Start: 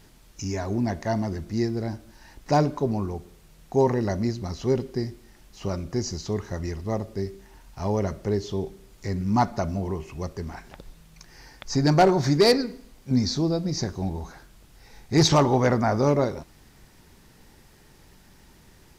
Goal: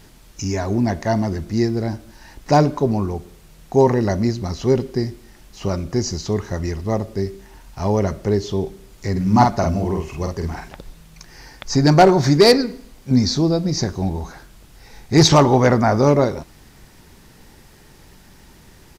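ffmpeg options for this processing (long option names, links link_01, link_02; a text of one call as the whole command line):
ffmpeg -i in.wav -filter_complex "[0:a]asplit=3[link_01][link_02][link_03];[link_01]afade=type=out:start_time=9.15:duration=0.02[link_04];[link_02]asplit=2[link_05][link_06];[link_06]adelay=48,volume=-3.5dB[link_07];[link_05][link_07]amix=inputs=2:normalize=0,afade=type=in:start_time=9.15:duration=0.02,afade=type=out:start_time=10.68:duration=0.02[link_08];[link_03]afade=type=in:start_time=10.68:duration=0.02[link_09];[link_04][link_08][link_09]amix=inputs=3:normalize=0,volume=6.5dB" out.wav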